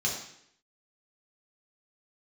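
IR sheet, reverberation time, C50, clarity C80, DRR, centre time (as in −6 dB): 0.70 s, 4.0 dB, 7.0 dB, −3.5 dB, 37 ms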